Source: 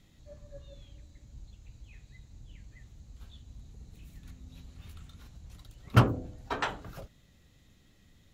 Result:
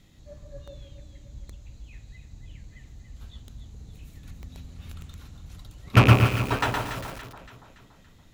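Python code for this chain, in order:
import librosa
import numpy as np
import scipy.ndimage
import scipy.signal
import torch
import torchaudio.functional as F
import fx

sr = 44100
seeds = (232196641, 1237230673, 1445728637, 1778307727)

y = fx.rattle_buzz(x, sr, strikes_db=-31.0, level_db=-17.0)
y = fx.echo_alternate(y, sr, ms=142, hz=1300.0, feedback_pct=69, wet_db=-5.5)
y = fx.echo_crushed(y, sr, ms=116, feedback_pct=35, bits=7, wet_db=-3.0)
y = y * 10.0 ** (4.5 / 20.0)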